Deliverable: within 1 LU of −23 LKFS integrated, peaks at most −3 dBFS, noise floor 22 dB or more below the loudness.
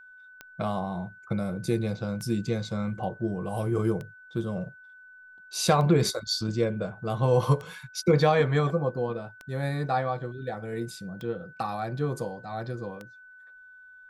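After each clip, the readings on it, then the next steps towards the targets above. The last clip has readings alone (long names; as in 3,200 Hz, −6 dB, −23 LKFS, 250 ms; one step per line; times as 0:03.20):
number of clicks 8; interfering tone 1,500 Hz; level of the tone −48 dBFS; integrated loudness −28.5 LKFS; sample peak −9.0 dBFS; target loudness −23.0 LKFS
→ click removal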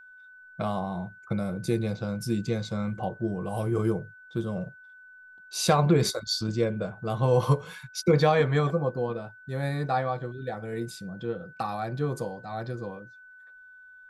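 number of clicks 0; interfering tone 1,500 Hz; level of the tone −48 dBFS
→ notch filter 1,500 Hz, Q 30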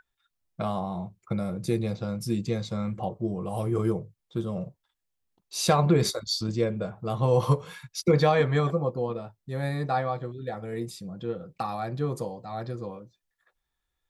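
interfering tone none found; integrated loudness −28.5 LKFS; sample peak −9.5 dBFS; target loudness −23.0 LKFS
→ level +5.5 dB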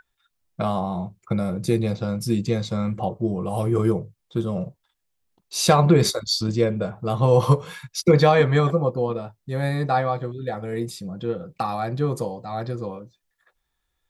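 integrated loudness −23.0 LKFS; sample peak −4.0 dBFS; background noise floor −77 dBFS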